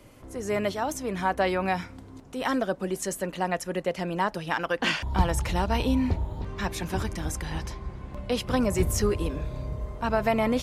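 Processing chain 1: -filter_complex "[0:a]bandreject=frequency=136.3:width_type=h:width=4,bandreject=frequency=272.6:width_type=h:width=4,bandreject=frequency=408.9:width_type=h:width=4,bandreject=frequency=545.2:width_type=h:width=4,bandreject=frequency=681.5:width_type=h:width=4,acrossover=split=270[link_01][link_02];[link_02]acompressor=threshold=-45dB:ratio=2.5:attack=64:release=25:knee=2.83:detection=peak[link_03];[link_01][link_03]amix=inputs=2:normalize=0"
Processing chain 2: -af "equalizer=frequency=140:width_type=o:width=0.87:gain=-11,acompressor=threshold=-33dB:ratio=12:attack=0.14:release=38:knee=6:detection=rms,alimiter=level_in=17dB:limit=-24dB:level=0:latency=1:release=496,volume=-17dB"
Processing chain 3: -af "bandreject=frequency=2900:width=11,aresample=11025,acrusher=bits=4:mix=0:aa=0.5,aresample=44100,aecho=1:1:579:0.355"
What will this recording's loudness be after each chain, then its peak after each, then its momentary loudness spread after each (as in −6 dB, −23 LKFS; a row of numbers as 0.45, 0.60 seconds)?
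−32.0, −49.5, −28.0 LKFS; −11.5, −41.0, −9.5 dBFS; 9, 3, 8 LU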